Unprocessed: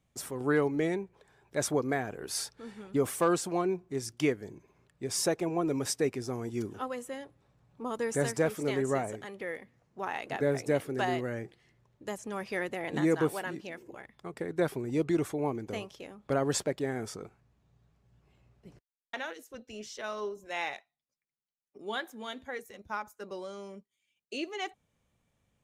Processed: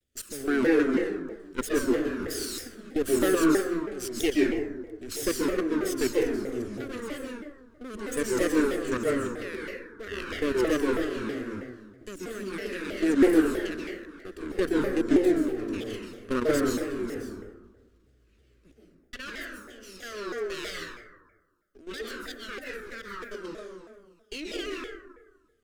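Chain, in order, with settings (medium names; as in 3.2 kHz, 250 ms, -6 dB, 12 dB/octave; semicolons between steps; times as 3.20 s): comb filter that takes the minimum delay 0.66 ms; level held to a coarse grid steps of 14 dB; static phaser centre 360 Hz, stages 4; reverberation RT60 1.3 s, pre-delay 118 ms, DRR -3.5 dB; vibrato with a chosen wave saw down 3.1 Hz, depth 250 cents; trim +6.5 dB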